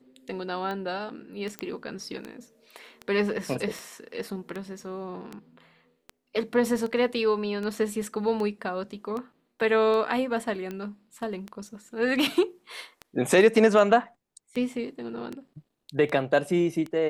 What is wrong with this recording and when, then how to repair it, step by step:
scratch tick 78 rpm −22 dBFS
0:01.59: click −17 dBFS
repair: click removal

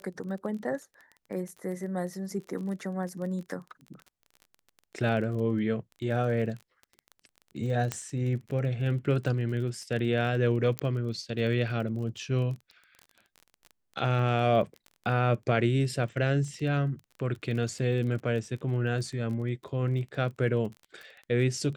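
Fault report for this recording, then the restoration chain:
surface crackle 23 per second −37 dBFS
0:07.92: click −14 dBFS
0:10.79: click −14 dBFS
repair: click removal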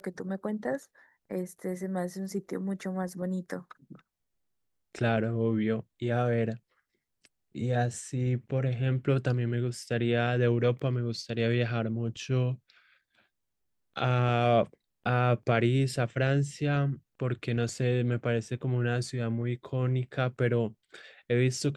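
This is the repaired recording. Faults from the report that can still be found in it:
0:10.79: click

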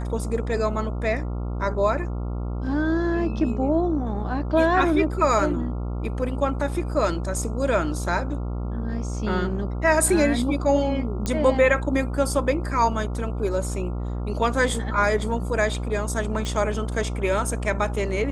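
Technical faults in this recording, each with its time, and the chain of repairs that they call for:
mains buzz 60 Hz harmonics 23 −28 dBFS
0:11.26: click −12 dBFS
0:16.45: click −17 dBFS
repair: click removal
hum removal 60 Hz, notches 23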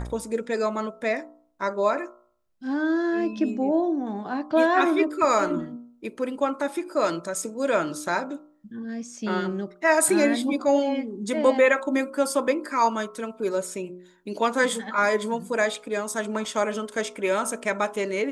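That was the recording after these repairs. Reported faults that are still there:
none of them is left

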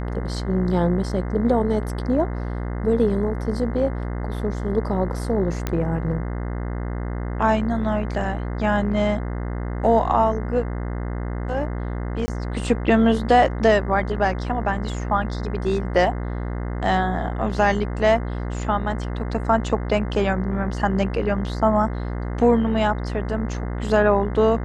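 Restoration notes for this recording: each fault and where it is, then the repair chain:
mains buzz 60 Hz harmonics 35 −27 dBFS
0:05.67: click −10 dBFS
0:12.26–0:12.28: drop-out 20 ms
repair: click removal
hum removal 60 Hz, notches 35
repair the gap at 0:12.26, 20 ms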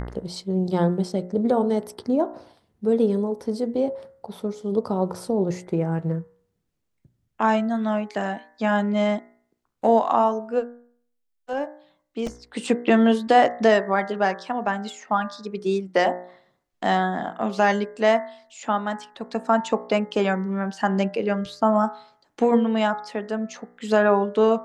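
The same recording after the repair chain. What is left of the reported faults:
0:05.67: click

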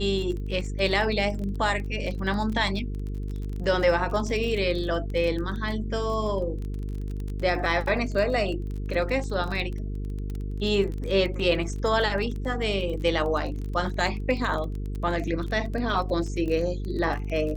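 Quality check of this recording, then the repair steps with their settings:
mains buzz 50 Hz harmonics 9 −31 dBFS
surface crackle 25 per second −31 dBFS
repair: click removal
hum removal 50 Hz, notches 9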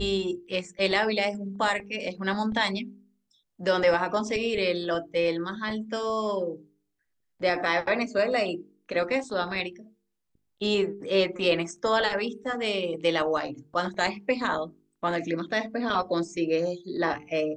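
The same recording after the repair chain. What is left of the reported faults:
none of them is left

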